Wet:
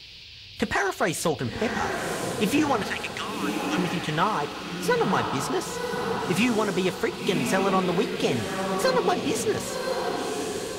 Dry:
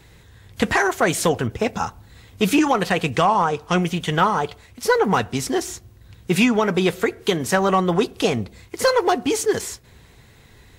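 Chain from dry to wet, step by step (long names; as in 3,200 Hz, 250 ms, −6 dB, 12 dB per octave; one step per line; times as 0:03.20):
0:02.82–0:03.78: high-pass filter 1,400 Hz 24 dB per octave
feedback delay with all-pass diffusion 1,058 ms, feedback 40%, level −3.5 dB
noise in a band 2,400–4,900 Hz −39 dBFS
level −6 dB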